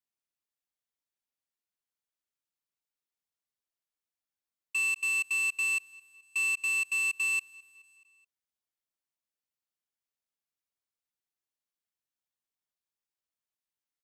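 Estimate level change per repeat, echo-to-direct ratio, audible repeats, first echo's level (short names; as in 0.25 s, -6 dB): -4.5 dB, -21.5 dB, 3, -23.0 dB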